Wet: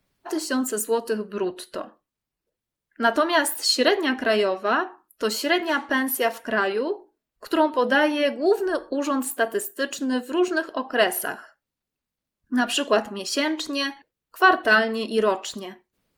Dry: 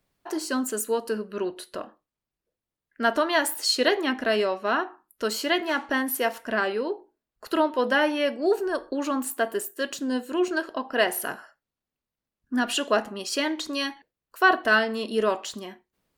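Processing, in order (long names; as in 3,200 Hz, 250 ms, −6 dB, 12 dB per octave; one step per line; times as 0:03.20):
spectral magnitudes quantised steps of 15 dB
level +3 dB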